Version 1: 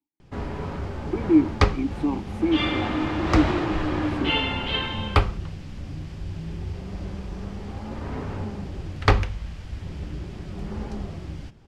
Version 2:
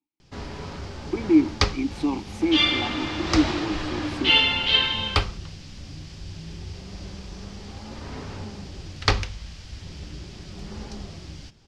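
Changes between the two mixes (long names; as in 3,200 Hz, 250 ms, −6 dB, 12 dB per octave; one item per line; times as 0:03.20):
first sound −5.0 dB
master: add parametric band 5,200 Hz +15 dB 1.7 octaves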